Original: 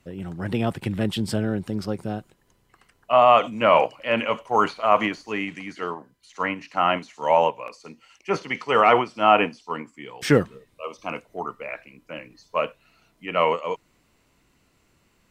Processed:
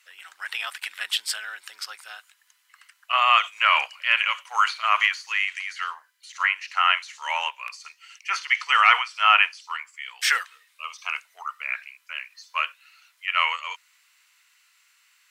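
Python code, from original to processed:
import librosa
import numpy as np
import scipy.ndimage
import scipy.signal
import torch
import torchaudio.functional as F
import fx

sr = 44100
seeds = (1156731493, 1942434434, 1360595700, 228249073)

y = scipy.signal.sosfilt(scipy.signal.butter(4, 1400.0, 'highpass', fs=sr, output='sos'), x)
y = y * librosa.db_to_amplitude(7.5)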